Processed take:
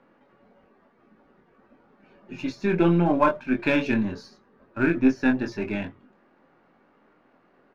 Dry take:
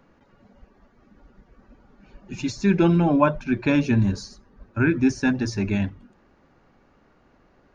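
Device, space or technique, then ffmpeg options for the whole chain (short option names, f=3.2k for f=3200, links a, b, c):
crystal radio: -filter_complex "[0:a]asettb=1/sr,asplit=3[a][b][c];[a]atrim=end=3.574[d];[b]atrim=start=3.57:end=4,asetpts=PTS-STARTPTS,afade=t=in:d=0.004:c=qsin,afade=t=out:st=0.426:d=0.004:c=qsin,highshelf=f=2.1k:g=7[e];[c]atrim=start=3.996[f];[d][e]acrossfade=d=0.004:c1=hsin:c2=qsin[g];[g][f]acrossfade=d=0.004:c1=qsin:c2=hsin,highpass=210,lowpass=3k,asplit=2[h][i];[i]adelay=23,volume=-4.5dB[j];[h][j]amix=inputs=2:normalize=0,aeval=exprs='if(lt(val(0),0),0.708*val(0),val(0))':c=same"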